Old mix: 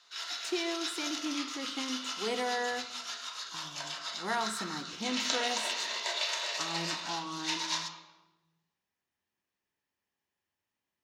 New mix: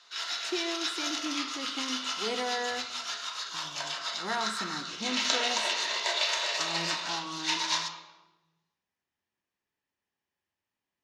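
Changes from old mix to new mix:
background +5.0 dB; master: add high shelf 11000 Hz -10 dB

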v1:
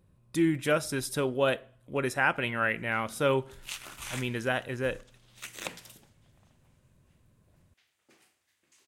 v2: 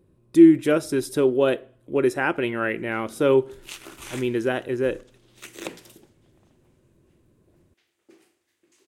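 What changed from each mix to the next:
master: add bell 350 Hz +15 dB 0.87 oct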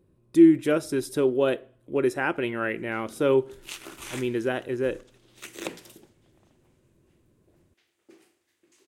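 speech -3.0 dB

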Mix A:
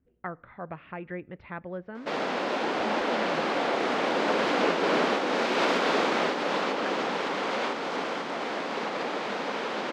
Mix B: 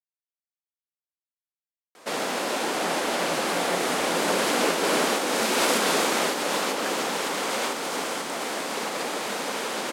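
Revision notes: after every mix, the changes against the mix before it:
speech: entry +2.60 s; master: remove air absorption 210 m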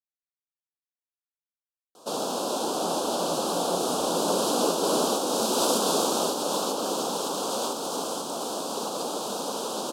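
master: add Butterworth band-stop 2000 Hz, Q 0.89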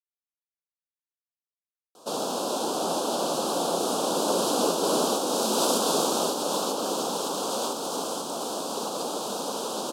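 speech: add HPF 170 Hz 24 dB/oct

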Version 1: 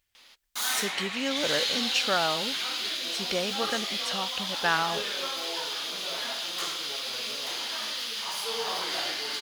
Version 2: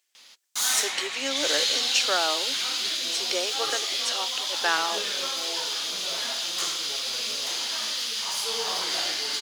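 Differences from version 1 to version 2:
speech: add steep high-pass 280 Hz 72 dB/oct; master: add bell 6800 Hz +8.5 dB 1.3 oct

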